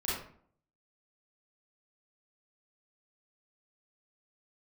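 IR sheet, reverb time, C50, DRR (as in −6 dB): 0.55 s, −0.5 dB, −9.0 dB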